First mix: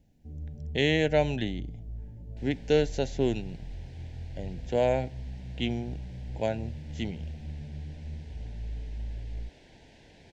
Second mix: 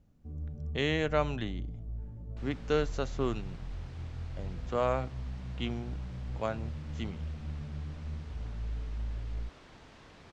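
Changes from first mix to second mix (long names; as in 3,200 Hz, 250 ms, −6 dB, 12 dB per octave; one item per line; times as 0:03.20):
speech −5.5 dB
master: remove Butterworth band-reject 1,200 Hz, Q 1.5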